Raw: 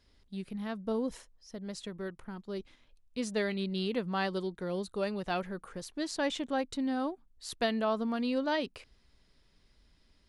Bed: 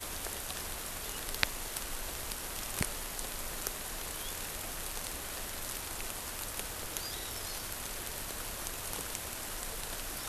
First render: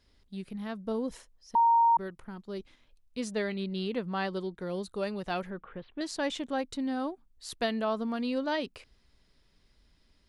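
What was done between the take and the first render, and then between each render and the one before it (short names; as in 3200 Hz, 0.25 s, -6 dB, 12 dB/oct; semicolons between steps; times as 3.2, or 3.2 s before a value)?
1.55–1.97 bleep 928 Hz -19 dBFS; 3.32–4.61 high shelf 6000 Hz -7.5 dB; 5.5–6.01 steep low-pass 3400 Hz 48 dB/oct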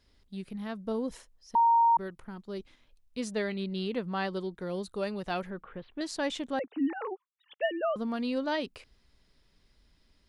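6.59–7.96 sine-wave speech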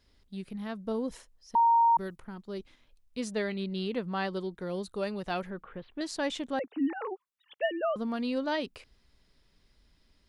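1.6–2.16 tone controls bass +3 dB, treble +9 dB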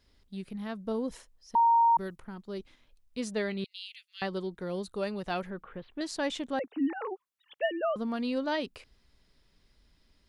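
3.64–4.22 steep high-pass 2400 Hz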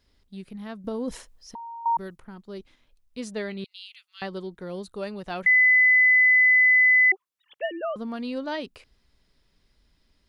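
0.84–1.86 negative-ratio compressor -34 dBFS; 3.68–4.21 band shelf 1000 Hz +12.5 dB 1.2 oct; 5.46–7.12 bleep 2010 Hz -14 dBFS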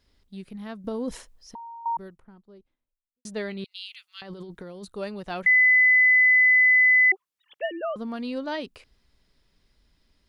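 1.12–3.25 studio fade out; 3.75–4.85 negative-ratio compressor -39 dBFS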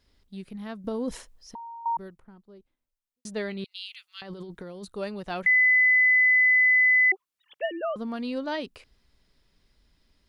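dynamic EQ 1700 Hz, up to -3 dB, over -32 dBFS, Q 1.9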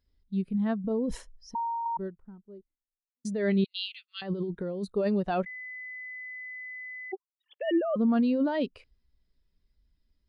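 negative-ratio compressor -33 dBFS, ratio -1; spectral expander 1.5:1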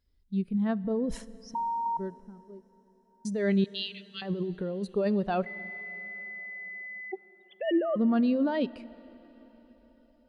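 plate-style reverb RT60 4.8 s, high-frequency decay 0.9×, DRR 18.5 dB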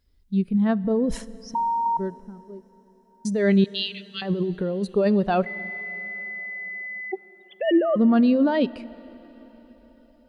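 gain +7 dB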